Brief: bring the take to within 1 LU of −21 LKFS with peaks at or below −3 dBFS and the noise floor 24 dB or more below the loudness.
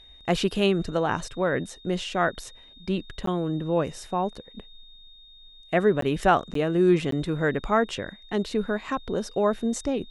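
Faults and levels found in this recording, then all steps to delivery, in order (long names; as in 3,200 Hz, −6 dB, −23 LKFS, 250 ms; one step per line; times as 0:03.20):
number of dropouts 4; longest dropout 13 ms; interfering tone 3,700 Hz; level of the tone −49 dBFS; integrated loudness −26.0 LKFS; sample peak −6.5 dBFS; target loudness −21.0 LKFS
→ repair the gap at 0:03.26/0:06.01/0:06.54/0:07.11, 13 ms
notch filter 3,700 Hz, Q 30
level +5 dB
brickwall limiter −3 dBFS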